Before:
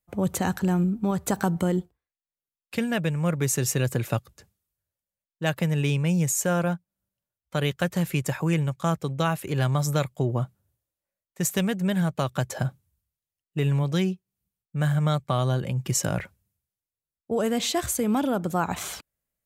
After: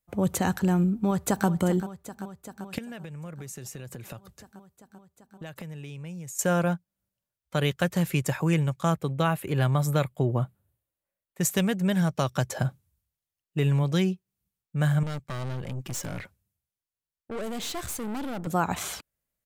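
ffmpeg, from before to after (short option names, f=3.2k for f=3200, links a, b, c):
-filter_complex "[0:a]asplit=2[a][b];[b]afade=t=in:st=0.93:d=0.01,afade=t=out:st=1.47:d=0.01,aecho=0:1:390|780|1170|1560|1950|2340|2730|3120|3510|3900|4290|4680:0.211349|0.169079|0.135263|0.108211|0.0865685|0.0692548|0.0554038|0.0443231|0.0354585|0.0283668|0.0226934|0.0181547[c];[a][c]amix=inputs=2:normalize=0,asettb=1/sr,asplit=3[d][e][f];[d]atrim=end=2.784[g];[e]atrim=start=2.78:end=6.39,asetpts=PTS-STARTPTS,afade=t=in:d=0.004:c=qsin,afade=t=out:st=3.606:d=0.004:c=qsin,acompressor=threshold=-36dB:ratio=12:attack=3.2:release=140:knee=1:detection=peak[h];[f]atrim=start=6.386[i];[g][h]acrossfade=d=0.004:c1=hsin:c2=qsin[j];[j][i]acrossfade=d=0.004:c1=qsin:c2=hsin,asettb=1/sr,asplit=3[k][l][m];[k]atrim=end=8.944[n];[l]atrim=start=8.94:end=11.41,asetpts=PTS-STARTPTS,afade=t=in:d=0.004:c=qsin,afade=t=out:st=2.466:d=0.004:c=qsin,equalizer=f=5.8k:w=1.5:g=-8.5[o];[m]atrim=start=11.406[p];[n][o]acrossfade=d=0.004:c1=hsin:c2=qsin[q];[q][p]acrossfade=d=0.004:c1=qsin:c2=hsin,asettb=1/sr,asplit=3[r][s][t];[r]atrim=end=11.924[u];[s]atrim=start=11.92:end=12.46,asetpts=PTS-STARTPTS,afade=t=in:d=0.004:c=qsin,afade=t=out:st=0.536:d=0.004:c=qsin,equalizer=f=5.6k:w=6.3:g=12[v];[t]atrim=start=12.456[w];[u][v]acrossfade=d=0.004:c1=hsin:c2=qsin[x];[x][w]acrossfade=d=0.004:c1=qsin:c2=hsin,asettb=1/sr,asplit=3[y][z][aa];[y]atrim=end=15.034[ab];[z]atrim=start=15.03:end=18.47,asetpts=PTS-STARTPTS,afade=t=in:d=0.004:c=qsin,afade=t=out:st=3.436:d=0.004:c=qsin,aeval=exprs='(tanh(35.5*val(0)+0.65)-tanh(0.65))/35.5':c=same[ac];[aa]atrim=start=18.466[ad];[ab][ac]acrossfade=d=0.004:c1=hsin:c2=qsin[ae];[ae][ad]acrossfade=d=0.004:c1=qsin:c2=hsin"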